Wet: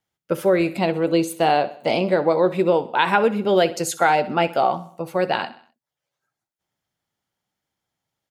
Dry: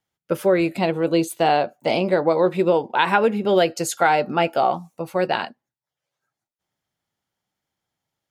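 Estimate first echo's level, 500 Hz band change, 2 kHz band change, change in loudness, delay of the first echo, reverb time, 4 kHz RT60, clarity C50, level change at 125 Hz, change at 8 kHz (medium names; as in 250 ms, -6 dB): -17.0 dB, 0.0 dB, 0.0 dB, 0.0 dB, 64 ms, no reverb, no reverb, no reverb, 0.0 dB, 0.0 dB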